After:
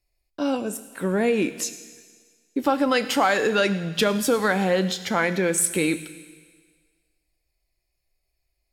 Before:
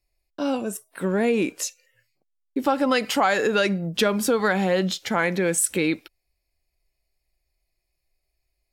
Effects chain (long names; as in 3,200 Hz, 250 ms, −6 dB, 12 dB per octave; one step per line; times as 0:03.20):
on a send: parametric band 710 Hz −7 dB 2.4 octaves + convolution reverb RT60 1.7 s, pre-delay 5 ms, DRR 11.5 dB